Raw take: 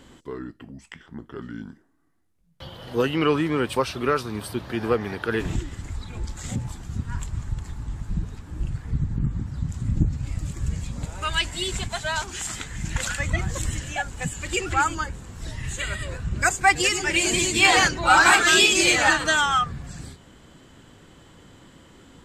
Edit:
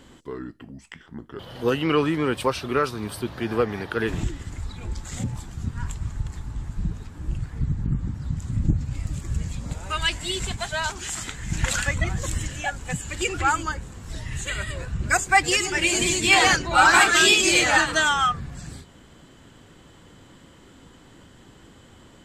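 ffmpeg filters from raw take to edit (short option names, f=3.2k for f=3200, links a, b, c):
-filter_complex "[0:a]asplit=4[a][b][c][d];[a]atrim=end=1.392[e];[b]atrim=start=2.708:end=12.822[f];[c]atrim=start=12.818:end=13.232,asetpts=PTS-STARTPTS,volume=3dB[g];[d]atrim=start=13.228[h];[e][f]acrossfade=d=0.004:c1=hsin:c2=hsin[i];[i][g]acrossfade=d=0.004:c1=hsin:c2=hsin[j];[j][h]acrossfade=d=0.004:c1=hsin:c2=hsin"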